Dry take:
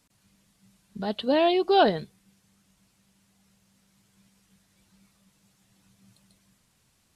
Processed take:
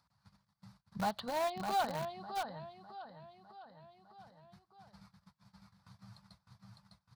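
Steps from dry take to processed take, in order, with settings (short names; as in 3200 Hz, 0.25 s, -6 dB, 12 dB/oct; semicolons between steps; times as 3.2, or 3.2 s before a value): gate -60 dBFS, range -46 dB; HPF 58 Hz 24 dB/oct; compressor 16:1, threshold -31 dBFS, peak gain reduction 17.5 dB; on a send: feedback echo 0.605 s, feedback 38%, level -4.5 dB; on the sum: upward compressor, threshold -45 dBFS; EQ curve 150 Hz 0 dB, 280 Hz -16 dB, 400 Hz -18 dB, 850 Hz +3 dB, 1300 Hz +2 dB, 2900 Hz -15 dB, 4600 Hz -2 dB, 6900 Hz -18 dB; in parallel at -8 dB: requantised 6-bit, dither none; on the sum: gain +2 dB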